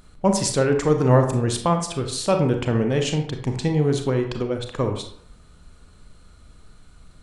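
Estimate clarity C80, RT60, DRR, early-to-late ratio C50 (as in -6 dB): 11.0 dB, 0.65 s, 4.5 dB, 7.5 dB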